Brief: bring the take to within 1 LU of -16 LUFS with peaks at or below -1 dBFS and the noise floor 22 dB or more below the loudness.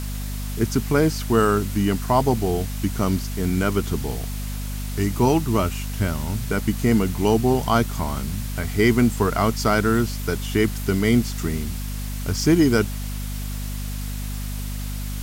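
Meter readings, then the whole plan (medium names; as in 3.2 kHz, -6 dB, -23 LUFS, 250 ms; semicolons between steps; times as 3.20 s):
hum 50 Hz; highest harmonic 250 Hz; hum level -26 dBFS; noise floor -29 dBFS; noise floor target -45 dBFS; loudness -22.5 LUFS; peak level -5.0 dBFS; loudness target -16.0 LUFS
-> hum notches 50/100/150/200/250 Hz; noise print and reduce 16 dB; trim +6.5 dB; peak limiter -1 dBFS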